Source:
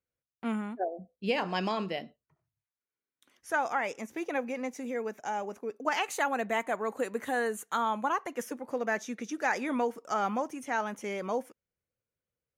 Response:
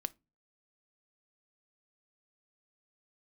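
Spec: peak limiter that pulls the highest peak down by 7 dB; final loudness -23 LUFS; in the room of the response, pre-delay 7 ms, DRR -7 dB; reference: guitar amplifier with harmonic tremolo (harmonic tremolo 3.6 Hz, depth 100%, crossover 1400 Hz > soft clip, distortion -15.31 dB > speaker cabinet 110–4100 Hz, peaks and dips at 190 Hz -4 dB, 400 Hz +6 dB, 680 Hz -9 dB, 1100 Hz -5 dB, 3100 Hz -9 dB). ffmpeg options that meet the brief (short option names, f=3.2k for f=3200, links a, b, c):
-filter_complex "[0:a]alimiter=limit=-22.5dB:level=0:latency=1,asplit=2[a][b];[1:a]atrim=start_sample=2205,adelay=7[c];[b][c]afir=irnorm=-1:irlink=0,volume=8dB[d];[a][d]amix=inputs=2:normalize=0,acrossover=split=1400[e][f];[e]aeval=exprs='val(0)*(1-1/2+1/2*cos(2*PI*3.6*n/s))':c=same[g];[f]aeval=exprs='val(0)*(1-1/2-1/2*cos(2*PI*3.6*n/s))':c=same[h];[g][h]amix=inputs=2:normalize=0,asoftclip=threshold=-21.5dB,highpass=110,equalizer=f=190:t=q:w=4:g=-4,equalizer=f=400:t=q:w=4:g=6,equalizer=f=680:t=q:w=4:g=-9,equalizer=f=1.1k:t=q:w=4:g=-5,equalizer=f=3.1k:t=q:w=4:g=-9,lowpass=f=4.1k:w=0.5412,lowpass=f=4.1k:w=1.3066,volume=10.5dB"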